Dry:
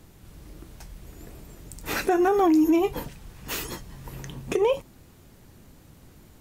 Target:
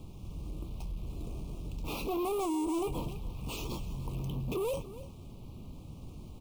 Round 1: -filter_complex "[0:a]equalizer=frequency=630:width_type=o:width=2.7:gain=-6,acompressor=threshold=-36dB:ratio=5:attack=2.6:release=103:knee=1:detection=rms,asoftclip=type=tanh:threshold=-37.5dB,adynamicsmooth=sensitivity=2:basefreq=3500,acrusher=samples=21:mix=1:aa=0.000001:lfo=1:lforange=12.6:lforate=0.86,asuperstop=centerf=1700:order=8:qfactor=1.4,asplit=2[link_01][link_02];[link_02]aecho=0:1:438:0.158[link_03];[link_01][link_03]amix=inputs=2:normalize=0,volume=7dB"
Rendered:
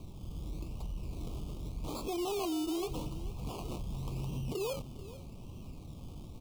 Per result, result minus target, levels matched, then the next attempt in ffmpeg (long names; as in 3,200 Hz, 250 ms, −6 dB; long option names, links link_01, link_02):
downward compressor: peak gain reduction +14 dB; echo 147 ms late; sample-and-hold swept by an LFO: distortion +11 dB
-filter_complex "[0:a]equalizer=frequency=630:width_type=o:width=2.7:gain=-6,asoftclip=type=tanh:threshold=-37.5dB,adynamicsmooth=sensitivity=2:basefreq=3500,acrusher=samples=21:mix=1:aa=0.000001:lfo=1:lforange=12.6:lforate=0.86,asuperstop=centerf=1700:order=8:qfactor=1.4,asplit=2[link_01][link_02];[link_02]aecho=0:1:438:0.158[link_03];[link_01][link_03]amix=inputs=2:normalize=0,volume=7dB"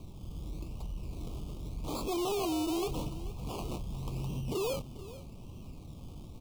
echo 147 ms late; sample-and-hold swept by an LFO: distortion +13 dB
-filter_complex "[0:a]equalizer=frequency=630:width_type=o:width=2.7:gain=-6,asoftclip=type=tanh:threshold=-37.5dB,adynamicsmooth=sensitivity=2:basefreq=3500,acrusher=samples=21:mix=1:aa=0.000001:lfo=1:lforange=12.6:lforate=0.86,asuperstop=centerf=1700:order=8:qfactor=1.4,asplit=2[link_01][link_02];[link_02]aecho=0:1:291:0.158[link_03];[link_01][link_03]amix=inputs=2:normalize=0,volume=7dB"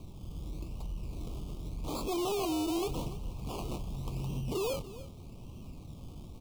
sample-and-hold swept by an LFO: distortion +13 dB
-filter_complex "[0:a]equalizer=frequency=630:width_type=o:width=2.7:gain=-6,asoftclip=type=tanh:threshold=-37.5dB,adynamicsmooth=sensitivity=2:basefreq=3500,acrusher=samples=4:mix=1:aa=0.000001:lfo=1:lforange=2.4:lforate=0.86,asuperstop=centerf=1700:order=8:qfactor=1.4,asplit=2[link_01][link_02];[link_02]aecho=0:1:291:0.158[link_03];[link_01][link_03]amix=inputs=2:normalize=0,volume=7dB"